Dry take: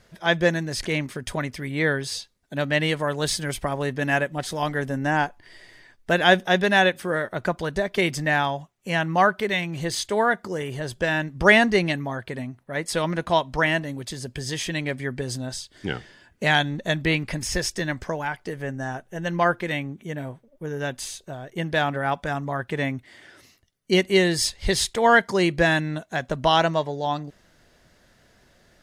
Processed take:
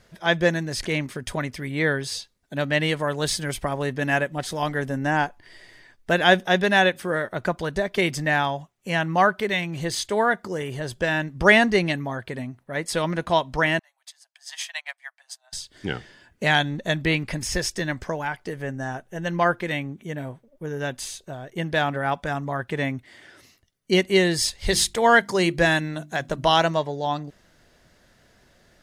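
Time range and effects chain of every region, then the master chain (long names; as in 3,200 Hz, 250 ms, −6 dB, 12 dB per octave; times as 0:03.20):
0:13.79–0:15.53: Butterworth high-pass 670 Hz 72 dB per octave + expander for the loud parts 2.5 to 1, over −43 dBFS
0:24.48–0:26.77: high-shelf EQ 5,800 Hz +5.5 dB + mains-hum notches 50/100/150/200/250/300/350 Hz
whole clip: no processing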